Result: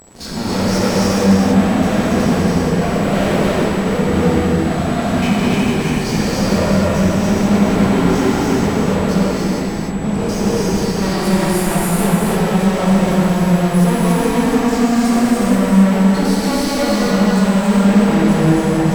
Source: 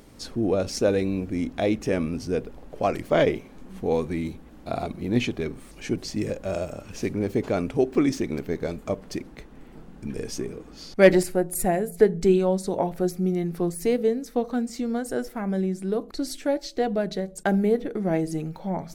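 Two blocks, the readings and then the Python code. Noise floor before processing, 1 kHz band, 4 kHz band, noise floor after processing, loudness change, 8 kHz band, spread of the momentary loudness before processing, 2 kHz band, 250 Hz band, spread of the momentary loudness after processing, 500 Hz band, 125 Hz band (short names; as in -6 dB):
-46 dBFS, +13.0 dB, +14.0 dB, -20 dBFS, +10.5 dB, +12.0 dB, 12 LU, +11.5 dB, +13.5 dB, 5 LU, +6.0 dB, +15.0 dB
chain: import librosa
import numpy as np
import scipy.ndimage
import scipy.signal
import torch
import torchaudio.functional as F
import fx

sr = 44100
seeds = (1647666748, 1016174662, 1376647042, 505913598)

y = fx.spec_steps(x, sr, hold_ms=50)
y = fx.peak_eq(y, sr, hz=200.0, db=10.5, octaves=0.67)
y = fx.fuzz(y, sr, gain_db=40.0, gate_db=-43.0)
y = y + 10.0 ** (-3.0 / 20.0) * np.pad(y, (int(282 * sr / 1000.0), 0))[:len(y)]
y = y + 10.0 ** (-31.0 / 20.0) * np.sin(2.0 * np.pi * 7800.0 * np.arange(len(y)) / sr)
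y = fx.high_shelf(y, sr, hz=4800.0, db=-6.0)
y = fx.rev_gated(y, sr, seeds[0], gate_ms=500, shape='flat', drr_db=-7.5)
y = y * 10.0 ** (-9.5 / 20.0)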